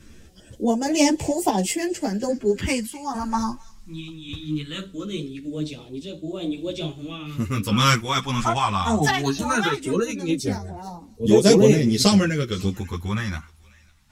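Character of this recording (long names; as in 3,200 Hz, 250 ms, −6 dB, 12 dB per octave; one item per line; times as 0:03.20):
phaser sweep stages 2, 0.2 Hz, lowest notch 450–1,300 Hz
sample-and-hold tremolo
a shimmering, thickened sound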